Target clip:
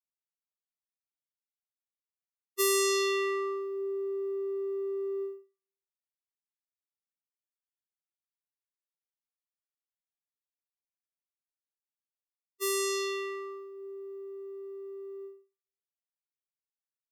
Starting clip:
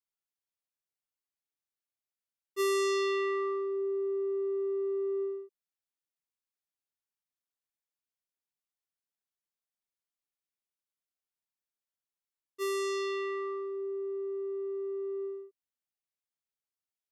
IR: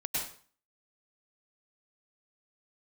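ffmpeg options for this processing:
-filter_complex "[0:a]aemphasis=mode=production:type=75kf,agate=range=-33dB:threshold=-30dB:ratio=3:detection=peak,asplit=2[a][b];[1:a]atrim=start_sample=2205,adelay=20[c];[b][c]afir=irnorm=-1:irlink=0,volume=-27dB[d];[a][d]amix=inputs=2:normalize=0"

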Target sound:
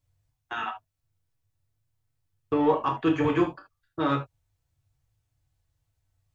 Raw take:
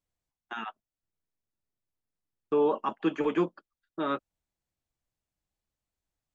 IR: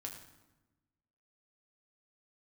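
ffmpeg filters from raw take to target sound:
-filter_complex "[0:a]lowshelf=f=160:t=q:w=3:g=9,aeval=exprs='0.15*(cos(1*acos(clip(val(0)/0.15,-1,1)))-cos(1*PI/2))+0.00668*(cos(5*acos(clip(val(0)/0.15,-1,1)))-cos(5*PI/2))':c=same[a];[1:a]atrim=start_sample=2205,atrim=end_sample=3528[b];[a][b]afir=irnorm=-1:irlink=0,volume=8dB"

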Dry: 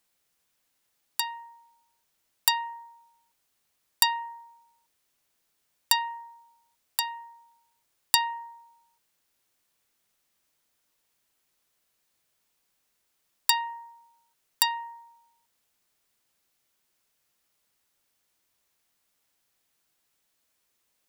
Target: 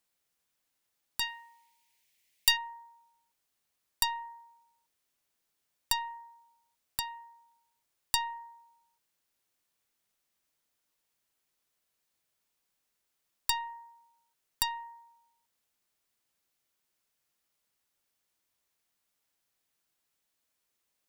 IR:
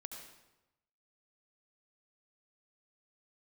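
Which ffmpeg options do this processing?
-filter_complex "[0:a]asplit=3[a][b][c];[a]afade=t=out:st=1.2:d=0.02[d];[b]highshelf=f=1.7k:t=q:w=3:g=7,afade=t=in:st=1.2:d=0.02,afade=t=out:st=2.56:d=0.02[e];[c]afade=t=in:st=2.56:d=0.02[f];[d][e][f]amix=inputs=3:normalize=0,asoftclip=type=tanh:threshold=-6dB,aeval=exprs='0.501*(cos(1*acos(clip(val(0)/0.501,-1,1)))-cos(1*PI/2))+0.0355*(cos(6*acos(clip(val(0)/0.501,-1,1)))-cos(6*PI/2))':c=same,volume=-6dB"

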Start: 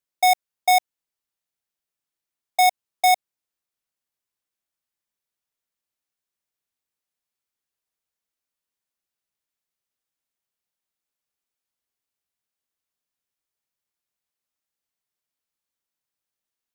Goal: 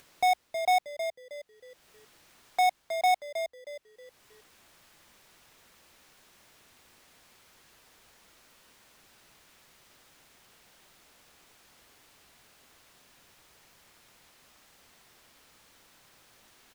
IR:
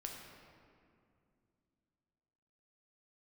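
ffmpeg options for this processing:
-filter_complex "[0:a]lowpass=f=3.4k:p=1,acompressor=mode=upward:threshold=-24dB:ratio=2.5,asplit=2[a][b];[b]asplit=4[c][d][e][f];[c]adelay=316,afreqshift=-76,volume=-9dB[g];[d]adelay=632,afreqshift=-152,volume=-18.4dB[h];[e]adelay=948,afreqshift=-228,volume=-27.7dB[i];[f]adelay=1264,afreqshift=-304,volume=-37.1dB[j];[g][h][i][j]amix=inputs=4:normalize=0[k];[a][k]amix=inputs=2:normalize=0,volume=-6.5dB"

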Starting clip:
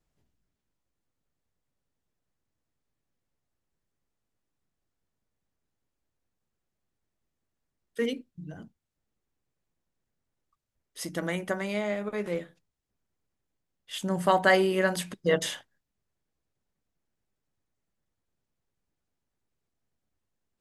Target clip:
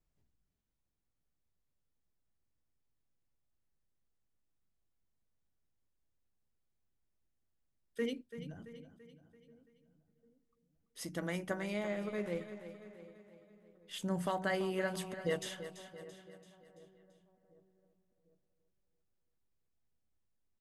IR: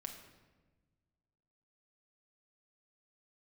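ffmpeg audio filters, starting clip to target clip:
-filter_complex "[0:a]lowshelf=f=130:g=6.5,asplit=2[a][b];[b]adelay=747,lowpass=f=930:p=1,volume=-20dB,asplit=2[c][d];[d]adelay=747,lowpass=f=930:p=1,volume=0.49,asplit=2[e][f];[f]adelay=747,lowpass=f=930:p=1,volume=0.49,asplit=2[g][h];[h]adelay=747,lowpass=f=930:p=1,volume=0.49[i];[c][e][g][i]amix=inputs=4:normalize=0[j];[a][j]amix=inputs=2:normalize=0,alimiter=limit=-15.5dB:level=0:latency=1:release=467,asplit=2[k][l];[l]aecho=0:1:336|672|1008|1344|1680:0.251|0.128|0.0653|0.0333|0.017[m];[k][m]amix=inputs=2:normalize=0,volume=-8dB"

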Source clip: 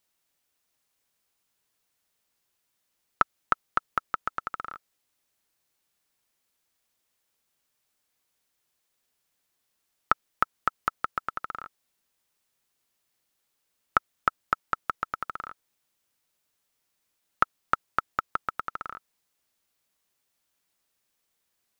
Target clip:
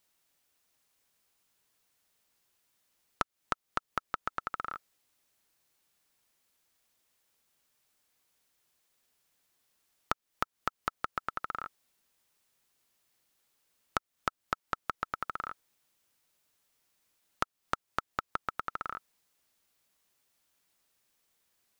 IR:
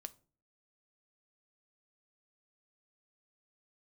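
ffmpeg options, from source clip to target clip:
-af "acompressor=threshold=-32dB:ratio=4,volume=2dB"

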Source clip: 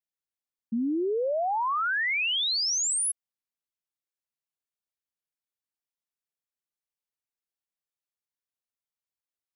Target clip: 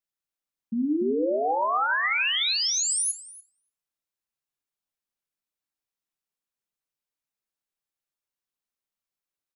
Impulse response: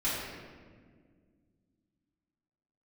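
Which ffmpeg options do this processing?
-filter_complex "[0:a]asplit=2[a][b];[b]adelay=291,lowpass=f=1.5k:p=1,volume=-4dB,asplit=2[c][d];[d]adelay=291,lowpass=f=1.5k:p=1,volume=0.17,asplit=2[e][f];[f]adelay=291,lowpass=f=1.5k:p=1,volume=0.17[g];[a][c][e][g]amix=inputs=4:normalize=0,asplit=2[h][i];[1:a]atrim=start_sample=2205,atrim=end_sample=3969[j];[i][j]afir=irnorm=-1:irlink=0,volume=-14dB[k];[h][k]amix=inputs=2:normalize=0"

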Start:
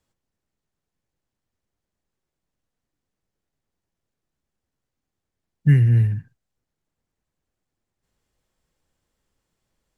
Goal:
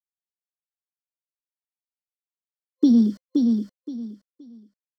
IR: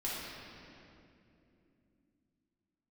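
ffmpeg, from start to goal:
-af "acompressor=threshold=-22dB:ratio=4,equalizer=f=100:t=o:w=2.5:g=8.5,bandreject=f=50:t=h:w=6,bandreject=f=100:t=h:w=6,aeval=exprs='val(0)*gte(abs(val(0)),0.00531)':c=same,asetrate=88200,aresample=44100,superequalizer=8b=0.447:9b=0.316:12b=0.398:14b=3.55:15b=1.78,aecho=1:1:522|1044|1566:0.631|0.145|0.0334"

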